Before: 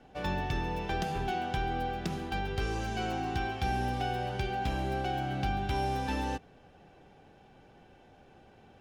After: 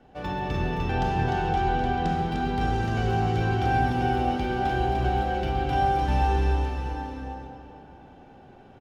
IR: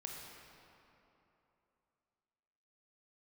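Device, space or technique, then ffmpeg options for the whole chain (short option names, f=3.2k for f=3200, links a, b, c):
swimming-pool hall: -filter_complex "[0:a]asettb=1/sr,asplit=3[a][b][c];[a]atrim=end=0.914[d];[b]atrim=start=0.91:end=2.18,asetpts=PTS-STARTPTS,afade=t=in:d=0.004:c=qsin,afade=t=out:st=1.266:d=0.004:c=qsin,lowpass=9.2k[e];[c]atrim=start=2.176[f];[d][e]acrossfade=d=0.004:c1=hsin:c2=qsin[g];[g][f]acrossfade=d=0.004:c1=qsin:c2=hsin[h];[1:a]atrim=start_sample=2205[i];[h][i]afir=irnorm=-1:irlink=0,equalizer=f=2.3k:t=o:w=0.33:g=-2.5,highshelf=f=3.7k:g=-8,aecho=1:1:300|555|771.8|956|1113:0.631|0.398|0.251|0.158|0.1,volume=7dB"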